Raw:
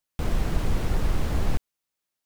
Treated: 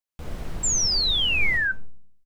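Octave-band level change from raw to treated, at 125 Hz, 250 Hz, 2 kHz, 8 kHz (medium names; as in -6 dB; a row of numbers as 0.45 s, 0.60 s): -8.0 dB, -7.5 dB, +17.5 dB, +21.0 dB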